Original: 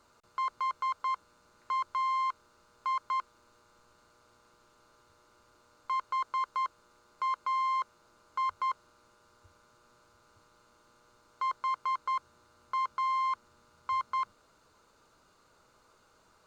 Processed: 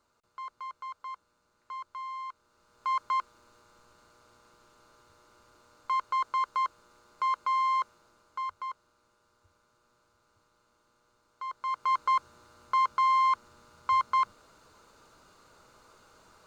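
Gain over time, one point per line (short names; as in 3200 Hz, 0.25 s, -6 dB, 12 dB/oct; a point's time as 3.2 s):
2.28 s -8.5 dB
2.96 s +3 dB
7.8 s +3 dB
8.69 s -6 dB
11.47 s -6 dB
11.96 s +6 dB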